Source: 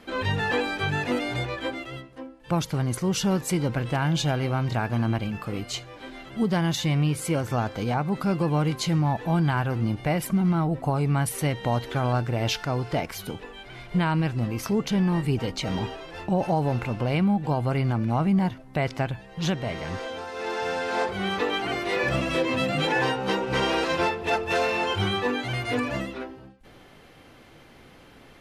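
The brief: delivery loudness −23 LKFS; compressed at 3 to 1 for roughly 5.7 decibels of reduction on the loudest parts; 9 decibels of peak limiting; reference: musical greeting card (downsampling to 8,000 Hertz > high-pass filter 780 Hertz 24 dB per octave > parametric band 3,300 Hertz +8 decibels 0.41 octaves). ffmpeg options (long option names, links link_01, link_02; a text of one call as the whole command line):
ffmpeg -i in.wav -af "acompressor=threshold=-27dB:ratio=3,alimiter=level_in=1dB:limit=-24dB:level=0:latency=1,volume=-1dB,aresample=8000,aresample=44100,highpass=frequency=780:width=0.5412,highpass=frequency=780:width=1.3066,equalizer=frequency=3300:width_type=o:width=0.41:gain=8,volume=14dB" out.wav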